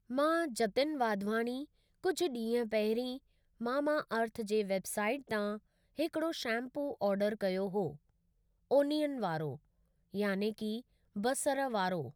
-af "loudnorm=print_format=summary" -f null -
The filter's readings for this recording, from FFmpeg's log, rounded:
Input Integrated:    -34.9 LUFS
Input True Peak:     -18.3 dBTP
Input LRA:             1.8 LU
Input Threshold:     -45.2 LUFS